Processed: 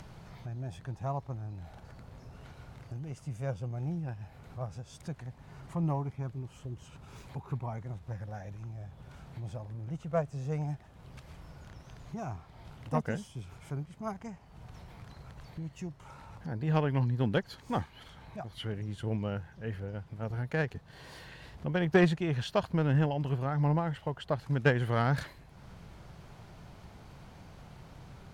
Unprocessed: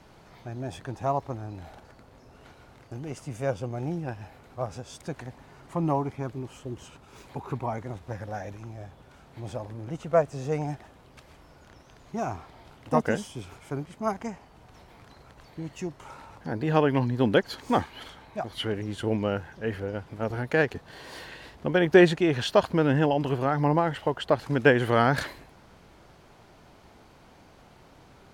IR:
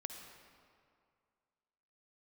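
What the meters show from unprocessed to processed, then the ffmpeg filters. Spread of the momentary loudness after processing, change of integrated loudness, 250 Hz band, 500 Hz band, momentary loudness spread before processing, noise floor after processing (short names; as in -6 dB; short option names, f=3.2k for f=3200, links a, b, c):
22 LU, -6.5 dB, -6.5 dB, -9.5 dB, 19 LU, -55 dBFS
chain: -af "acompressor=mode=upward:threshold=-34dB:ratio=2.5,lowshelf=f=210:t=q:w=1.5:g=7,aeval=exprs='0.562*(cos(1*acos(clip(val(0)/0.562,-1,1)))-cos(1*PI/2))+0.0794*(cos(3*acos(clip(val(0)/0.562,-1,1)))-cos(3*PI/2))':c=same,volume=-5dB"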